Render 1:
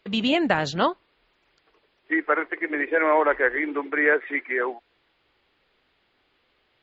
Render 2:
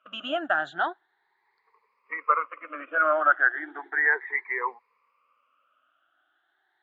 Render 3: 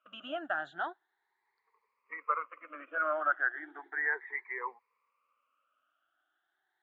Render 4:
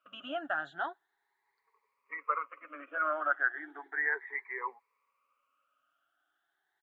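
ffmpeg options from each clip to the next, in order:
-af "afftfilt=real='re*pow(10,21/40*sin(2*PI*(0.88*log(max(b,1)*sr/1024/100)/log(2)-(0.35)*(pts-256)/sr)))':imag='im*pow(10,21/40*sin(2*PI*(0.88*log(max(b,1)*sr/1024/100)/log(2)-(0.35)*(pts-256)/sr)))':win_size=1024:overlap=0.75,bandpass=f=1.2k:t=q:w=3.3:csg=0,volume=1dB"
-filter_complex "[0:a]acrossover=split=3500[a][b];[b]acompressor=threshold=-51dB:ratio=4:attack=1:release=60[c];[a][c]amix=inputs=2:normalize=0,volume=-9dB"
-af "aecho=1:1:7.2:0.36"

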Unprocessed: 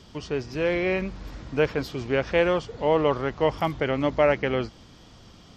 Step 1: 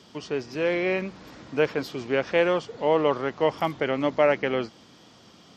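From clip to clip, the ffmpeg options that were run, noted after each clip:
-af "highpass=180"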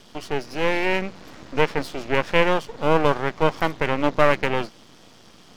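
-af "aeval=exprs='max(val(0),0)':c=same,volume=6.5dB"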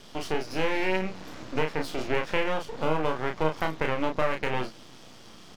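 -filter_complex "[0:a]acompressor=threshold=-22dB:ratio=4,asplit=2[a][b];[b]adelay=32,volume=-4.5dB[c];[a][c]amix=inputs=2:normalize=0,volume=-1dB"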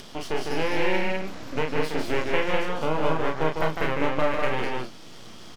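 -af "aecho=1:1:151.6|201.2:0.562|0.708,acompressor=mode=upward:threshold=-36dB:ratio=2.5"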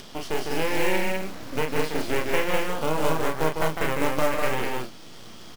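-af "acrusher=bits=4:mode=log:mix=0:aa=0.000001"

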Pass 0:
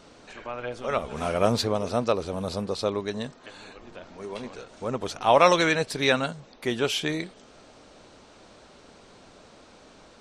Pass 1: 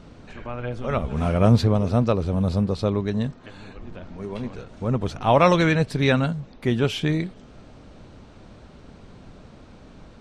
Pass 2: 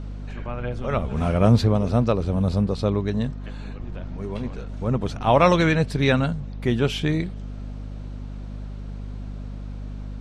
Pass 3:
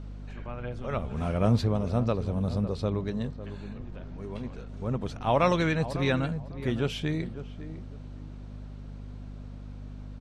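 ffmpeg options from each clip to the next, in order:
-af "bass=f=250:g=15,treble=f=4k:g=-7"
-af "aeval=exprs='val(0)+0.0251*(sin(2*PI*50*n/s)+sin(2*PI*2*50*n/s)/2+sin(2*PI*3*50*n/s)/3+sin(2*PI*4*50*n/s)/4+sin(2*PI*5*50*n/s)/5)':c=same"
-filter_complex "[0:a]asplit=2[a][b];[b]adelay=552,lowpass=f=1.1k:p=1,volume=-12dB,asplit=2[c][d];[d]adelay=552,lowpass=f=1.1k:p=1,volume=0.25,asplit=2[e][f];[f]adelay=552,lowpass=f=1.1k:p=1,volume=0.25[g];[a][c][e][g]amix=inputs=4:normalize=0,volume=-7dB"

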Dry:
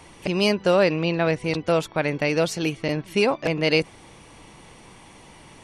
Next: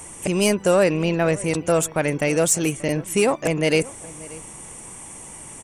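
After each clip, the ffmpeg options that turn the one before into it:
-filter_complex "[0:a]highshelf=f=5.9k:t=q:w=3:g=11,asplit=2[a][b];[b]asoftclip=type=hard:threshold=-22dB,volume=-7dB[c];[a][c]amix=inputs=2:normalize=0,asplit=2[d][e];[e]adelay=583.1,volume=-20dB,highshelf=f=4k:g=-13.1[f];[d][f]amix=inputs=2:normalize=0"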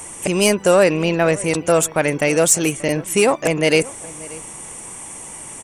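-af "lowshelf=f=240:g=-6,volume=5dB"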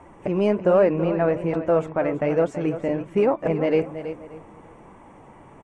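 -af "lowpass=1.2k,aecho=1:1:329:0.266,flanger=delay=3.1:depth=7.2:regen=-55:speed=1.2:shape=sinusoidal"

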